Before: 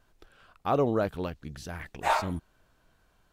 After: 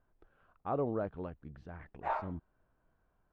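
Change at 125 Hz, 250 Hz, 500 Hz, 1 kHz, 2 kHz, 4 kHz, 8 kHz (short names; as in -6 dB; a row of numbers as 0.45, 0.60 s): -8.0 dB, -8.0 dB, -8.0 dB, -9.0 dB, -13.0 dB, under -20 dB, under -30 dB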